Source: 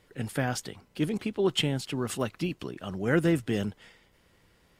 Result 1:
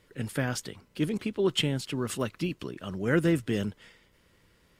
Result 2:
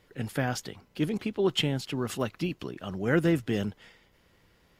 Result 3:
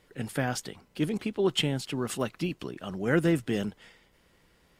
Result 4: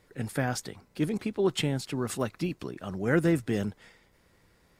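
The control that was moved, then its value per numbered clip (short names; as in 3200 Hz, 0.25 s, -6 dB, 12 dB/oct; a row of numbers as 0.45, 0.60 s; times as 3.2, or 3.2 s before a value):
bell, frequency: 760, 8700, 100, 3000 Hz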